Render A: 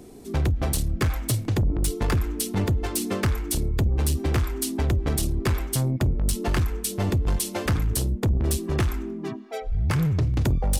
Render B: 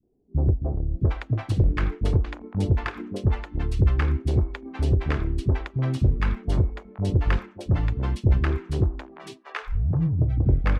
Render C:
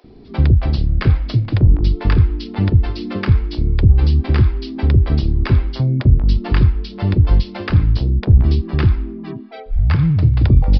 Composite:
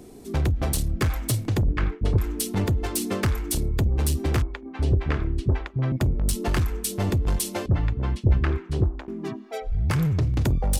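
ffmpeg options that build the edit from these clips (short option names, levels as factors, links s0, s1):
-filter_complex "[1:a]asplit=3[s0][s1][s2];[0:a]asplit=4[s3][s4][s5][s6];[s3]atrim=end=1.682[s7];[s0]atrim=start=1.678:end=2.182[s8];[s4]atrim=start=2.178:end=4.422[s9];[s1]atrim=start=4.418:end=5.922[s10];[s5]atrim=start=5.918:end=7.662[s11];[s2]atrim=start=7.658:end=9.082[s12];[s6]atrim=start=9.078[s13];[s7][s8]acrossfade=d=0.004:c1=hsin:c2=hsin[s14];[s14][s9]acrossfade=d=0.004:c1=hsin:c2=hsin[s15];[s15][s10]acrossfade=d=0.004:c1=hsin:c2=hsin[s16];[s16][s11]acrossfade=d=0.004:c1=hsin:c2=hsin[s17];[s17][s12]acrossfade=d=0.004:c1=hsin:c2=hsin[s18];[s18][s13]acrossfade=d=0.004:c1=hsin:c2=hsin"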